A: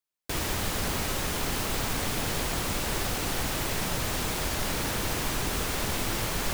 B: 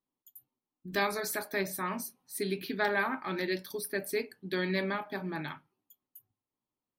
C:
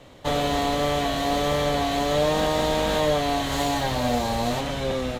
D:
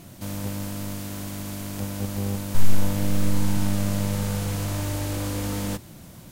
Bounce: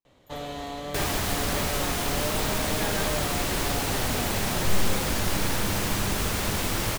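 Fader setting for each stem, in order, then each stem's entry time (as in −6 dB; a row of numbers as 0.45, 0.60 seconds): +2.0, −7.0, −11.5, −9.5 decibels; 0.65, 0.00, 0.05, 2.10 seconds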